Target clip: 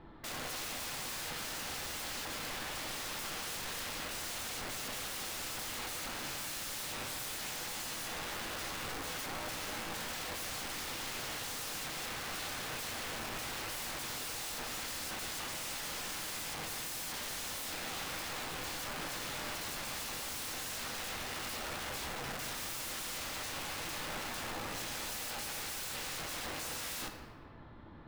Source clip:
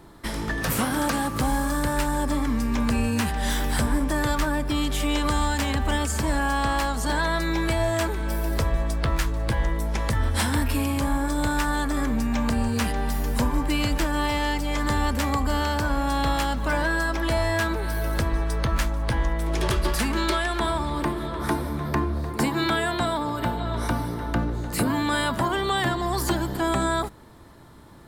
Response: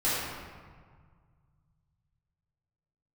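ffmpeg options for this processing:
-filter_complex "[0:a]lowpass=f=3.5k:w=0.5412,lowpass=f=3.5k:w=1.3066,aeval=exprs='(mod(35.5*val(0)+1,2)-1)/35.5':c=same,asplit=2[a][b];[1:a]atrim=start_sample=2205[c];[b][c]afir=irnorm=-1:irlink=0,volume=-14.5dB[d];[a][d]amix=inputs=2:normalize=0,volume=-7dB"

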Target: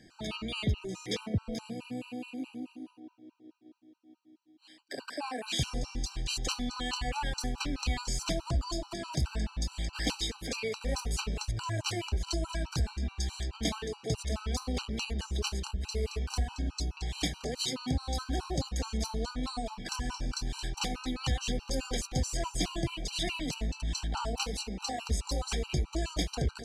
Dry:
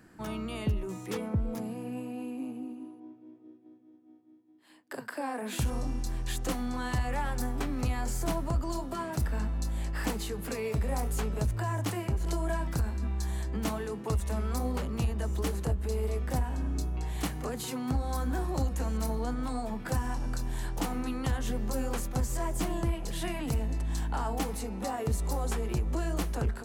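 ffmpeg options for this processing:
-af "lowpass=f=4.6k:t=q:w=1.6,aexciter=amount=3:drive=4.9:freq=2.4k,afftfilt=real='re*gt(sin(2*PI*4.7*pts/sr)*(1-2*mod(floor(b*sr/1024/780),2)),0)':imag='im*gt(sin(2*PI*4.7*pts/sr)*(1-2*mod(floor(b*sr/1024/780),2)),0)':win_size=1024:overlap=0.75"

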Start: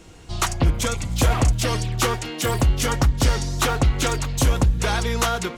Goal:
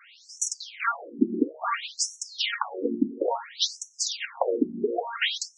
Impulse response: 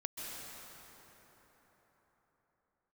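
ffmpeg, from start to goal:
-filter_complex "[0:a]equalizer=f=10k:w=1.7:g=-14,asplit=2[a][b];[b]asoftclip=type=hard:threshold=-19.5dB,volume=-10dB[c];[a][c]amix=inputs=2:normalize=0,afftfilt=real='re*between(b*sr/1024,270*pow(7900/270,0.5+0.5*sin(2*PI*0.58*pts/sr))/1.41,270*pow(7900/270,0.5+0.5*sin(2*PI*0.58*pts/sr))*1.41)':imag='im*between(b*sr/1024,270*pow(7900/270,0.5+0.5*sin(2*PI*0.58*pts/sr))/1.41,270*pow(7900/270,0.5+0.5*sin(2*PI*0.58*pts/sr))*1.41)':win_size=1024:overlap=0.75,volume=4dB"

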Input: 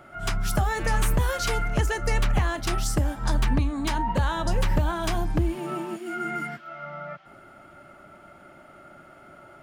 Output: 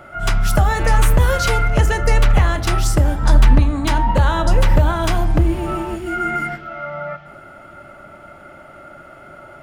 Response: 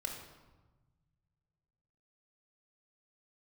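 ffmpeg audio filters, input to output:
-filter_complex "[0:a]asplit=2[a][b];[1:a]atrim=start_sample=2205,lowpass=3.9k[c];[b][c]afir=irnorm=-1:irlink=0,volume=-6.5dB[d];[a][d]amix=inputs=2:normalize=0,volume=6dB"

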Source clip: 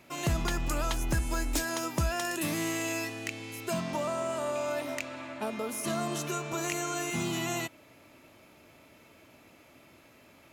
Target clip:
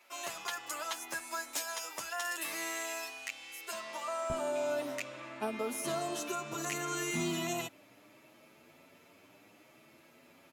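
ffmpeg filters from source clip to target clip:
-filter_complex "[0:a]asetnsamples=n=441:p=0,asendcmd='4.3 highpass f 140',highpass=730,asplit=2[a][b];[b]adelay=8.5,afreqshift=0.67[c];[a][c]amix=inputs=2:normalize=1"

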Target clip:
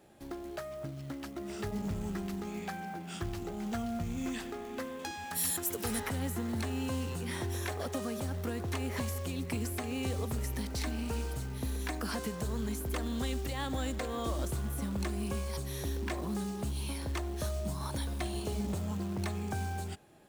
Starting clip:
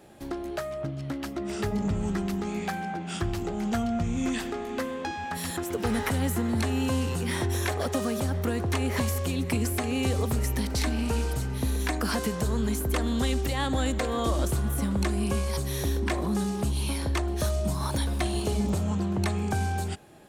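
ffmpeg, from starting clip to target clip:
-filter_complex "[0:a]asettb=1/sr,asplit=3[a][b][c];[a]atrim=end=4.994[d];[b]atrim=start=4.99:end=6,asetpts=PTS-STARTPTS,afade=t=in:d=0.004:c=qsin,afade=t=out:st=1.006:d=0.004:c=qsin,aemphasis=mode=production:type=75fm[e];[c]atrim=start=5.996[f];[d][e]acrossfade=d=0.004:c1=hsin:c2=qsin[g];[g][f]acrossfade=d=0.004:c1=qsin:c2=hsin,acrusher=bits=5:mode=log:mix=0:aa=0.000001,volume=-8dB"

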